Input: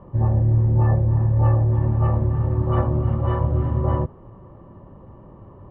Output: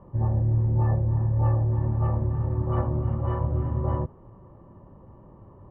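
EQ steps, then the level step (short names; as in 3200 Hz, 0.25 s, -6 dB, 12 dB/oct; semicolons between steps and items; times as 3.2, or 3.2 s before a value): air absorption 270 m; bell 900 Hz +2.5 dB 0.23 oct; -5.0 dB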